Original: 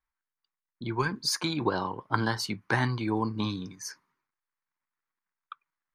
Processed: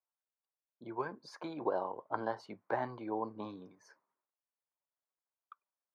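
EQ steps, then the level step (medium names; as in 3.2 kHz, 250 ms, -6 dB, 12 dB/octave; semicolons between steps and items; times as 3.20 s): band-pass filter 610 Hz, Q 3.1; +2.5 dB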